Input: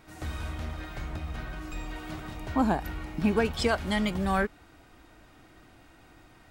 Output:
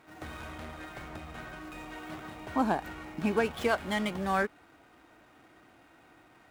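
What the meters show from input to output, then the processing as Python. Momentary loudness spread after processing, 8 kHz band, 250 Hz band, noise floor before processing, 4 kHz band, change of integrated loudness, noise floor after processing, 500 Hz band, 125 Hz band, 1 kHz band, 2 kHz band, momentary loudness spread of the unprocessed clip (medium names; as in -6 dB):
14 LU, -4.0 dB, -4.5 dB, -56 dBFS, -4.5 dB, -3.0 dB, -60 dBFS, -1.5 dB, -8.0 dB, -0.5 dB, -1.0 dB, 13 LU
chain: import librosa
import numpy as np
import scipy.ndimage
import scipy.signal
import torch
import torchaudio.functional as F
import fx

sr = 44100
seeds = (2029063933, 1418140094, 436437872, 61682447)

y = scipy.ndimage.median_filter(x, 9, mode='constant')
y = fx.highpass(y, sr, hz=300.0, slope=6)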